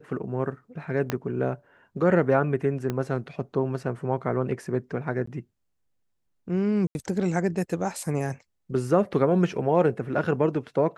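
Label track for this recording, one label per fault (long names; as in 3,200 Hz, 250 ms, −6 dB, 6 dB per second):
1.100000	1.100000	click −11 dBFS
2.900000	2.900000	click −15 dBFS
5.260000	5.270000	drop-out 14 ms
6.870000	6.950000	drop-out 80 ms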